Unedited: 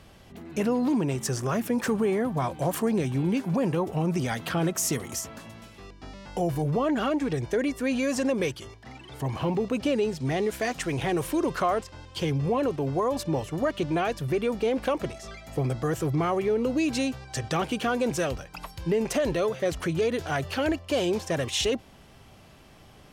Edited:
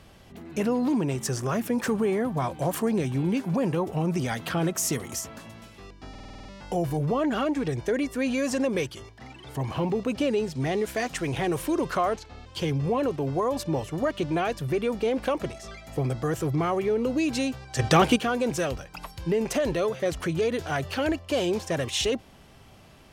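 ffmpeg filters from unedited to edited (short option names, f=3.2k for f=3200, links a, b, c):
-filter_complex "[0:a]asplit=12[a][b][c][d][e][f][g][h][i][j][k][l];[a]atrim=end=6.152[m];[b]atrim=start=6.098:end=6.152[n];[c]atrim=start=6.098:end=6.152[o];[d]atrim=start=6.098:end=6.152[p];[e]atrim=start=6.098:end=6.152[q];[f]atrim=start=6.098:end=6.152[r];[g]atrim=start=6.098:end=6.152[s];[h]atrim=start=6.098:end=11.814[t];[i]atrim=start=11.81:end=12.06,asetpts=PTS-STARTPTS,asetrate=36603,aresample=44100,atrim=end_sample=13283,asetpts=PTS-STARTPTS[u];[j]atrim=start=12.056:end=17.392[v];[k]atrim=start=17.388:end=17.762,asetpts=PTS-STARTPTS,volume=8.5dB[w];[l]atrim=start=17.758[x];[m][n]acrossfade=d=0.004:c1=hsin:c2=hsin[y];[y][o]acrossfade=d=0.004:c1=hsin:c2=hsin[z];[z][p]acrossfade=d=0.004:c1=hsin:c2=hsin[aa];[aa][q]acrossfade=d=0.004:c1=hsin:c2=hsin[ab];[ab][r]acrossfade=d=0.004:c1=hsin:c2=hsin[ac];[ac][s]acrossfade=d=0.004:c1=hsin:c2=hsin[ad];[ad][t]acrossfade=d=0.004:c1=hsin:c2=hsin[ae];[ae][u]acrossfade=d=0.004:c1=hsin:c2=hsin[af];[af][v]acrossfade=d=0.004:c1=hsin:c2=hsin[ag];[ag][w]acrossfade=d=0.004:c1=hsin:c2=hsin[ah];[ah][x]acrossfade=d=0.004:c1=hsin:c2=hsin"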